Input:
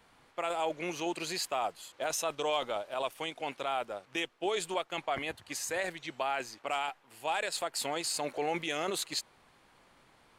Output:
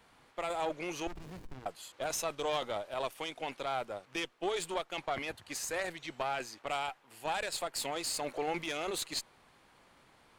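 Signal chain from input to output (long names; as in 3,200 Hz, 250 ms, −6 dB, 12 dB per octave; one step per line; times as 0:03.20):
one-sided soft clipper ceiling −31 dBFS
0:01.07–0:01.66: windowed peak hold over 65 samples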